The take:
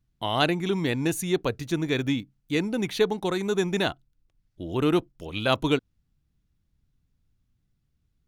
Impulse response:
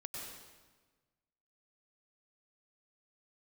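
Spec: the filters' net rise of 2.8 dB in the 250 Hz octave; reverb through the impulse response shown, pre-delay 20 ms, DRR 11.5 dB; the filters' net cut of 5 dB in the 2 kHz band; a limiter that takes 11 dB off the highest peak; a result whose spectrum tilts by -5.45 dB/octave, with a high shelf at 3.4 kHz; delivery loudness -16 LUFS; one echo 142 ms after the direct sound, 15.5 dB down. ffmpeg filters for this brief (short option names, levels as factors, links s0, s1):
-filter_complex "[0:a]equalizer=f=250:t=o:g=4,equalizer=f=2000:t=o:g=-8.5,highshelf=f=3400:g=4,alimiter=limit=0.119:level=0:latency=1,aecho=1:1:142:0.168,asplit=2[s0][s1];[1:a]atrim=start_sample=2205,adelay=20[s2];[s1][s2]afir=irnorm=-1:irlink=0,volume=0.316[s3];[s0][s3]amix=inputs=2:normalize=0,volume=4.47"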